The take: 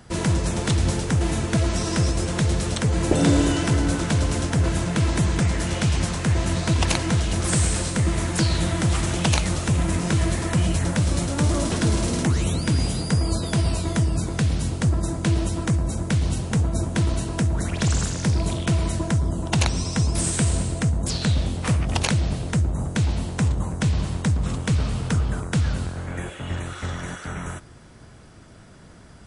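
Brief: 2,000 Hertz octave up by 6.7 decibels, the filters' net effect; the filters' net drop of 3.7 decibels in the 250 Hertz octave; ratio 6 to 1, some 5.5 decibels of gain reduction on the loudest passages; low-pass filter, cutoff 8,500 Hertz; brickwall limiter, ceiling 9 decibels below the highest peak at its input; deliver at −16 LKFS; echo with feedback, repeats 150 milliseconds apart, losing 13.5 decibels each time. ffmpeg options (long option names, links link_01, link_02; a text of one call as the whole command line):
ffmpeg -i in.wav -af "lowpass=8500,equalizer=frequency=250:width_type=o:gain=-6,equalizer=frequency=2000:width_type=o:gain=8.5,acompressor=threshold=-22dB:ratio=6,alimiter=limit=-18dB:level=0:latency=1,aecho=1:1:150|300:0.211|0.0444,volume=12dB" out.wav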